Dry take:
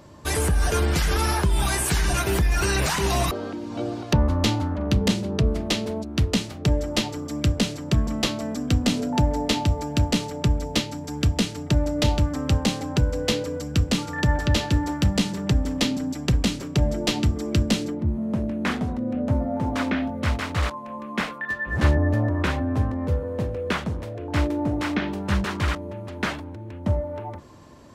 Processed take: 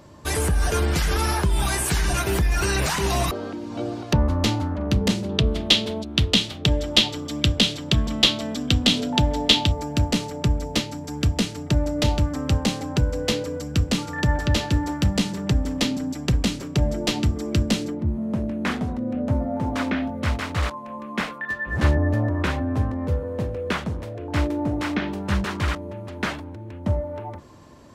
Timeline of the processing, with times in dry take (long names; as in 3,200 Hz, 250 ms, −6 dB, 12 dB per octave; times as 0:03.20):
0:05.29–0:09.72: parametric band 3,400 Hz +13.5 dB 0.83 octaves